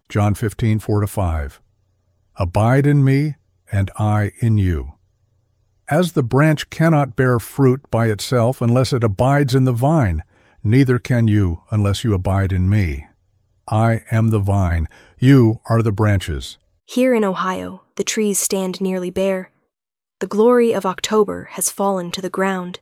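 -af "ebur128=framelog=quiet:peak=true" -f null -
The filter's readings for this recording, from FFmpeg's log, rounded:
Integrated loudness:
  I:         -17.8 LUFS
  Threshold: -28.4 LUFS
Loudness range:
  LRA:         3.2 LU
  Threshold: -38.3 LUFS
  LRA low:   -20.0 LUFS
  LRA high:  -16.8 LUFS
True peak:
  Peak:       -1.9 dBFS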